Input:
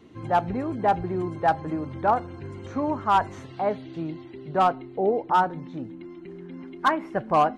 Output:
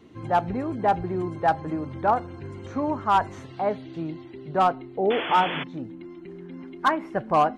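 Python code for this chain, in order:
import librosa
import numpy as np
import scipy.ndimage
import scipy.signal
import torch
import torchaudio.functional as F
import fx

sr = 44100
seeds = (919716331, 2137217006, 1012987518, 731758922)

y = fx.spec_paint(x, sr, seeds[0], shape='noise', start_s=5.1, length_s=0.54, low_hz=210.0, high_hz=3500.0, level_db=-31.0)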